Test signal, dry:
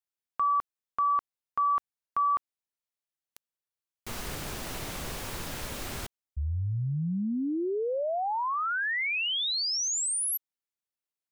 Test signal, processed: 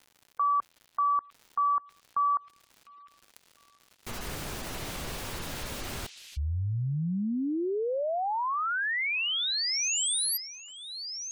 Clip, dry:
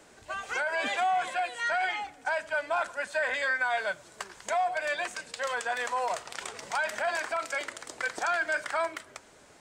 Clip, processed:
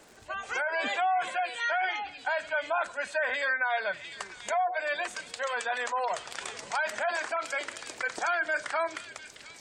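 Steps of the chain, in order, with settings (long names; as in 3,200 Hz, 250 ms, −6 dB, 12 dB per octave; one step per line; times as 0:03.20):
surface crackle 190 per second −43 dBFS
echo through a band-pass that steps 702 ms, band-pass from 3,400 Hz, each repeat 0.7 octaves, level −5 dB
gate on every frequency bin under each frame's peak −30 dB strong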